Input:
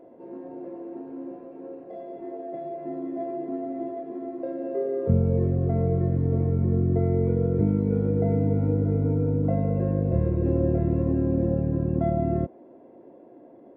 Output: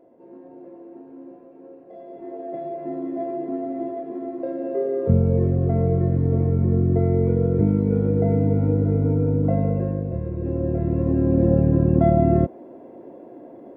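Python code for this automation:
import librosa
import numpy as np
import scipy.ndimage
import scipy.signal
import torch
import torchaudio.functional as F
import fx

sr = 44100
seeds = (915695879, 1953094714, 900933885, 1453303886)

y = fx.gain(x, sr, db=fx.line((1.82, -4.5), (2.51, 3.5), (9.67, 3.5), (10.21, -5.0), (11.58, 7.5)))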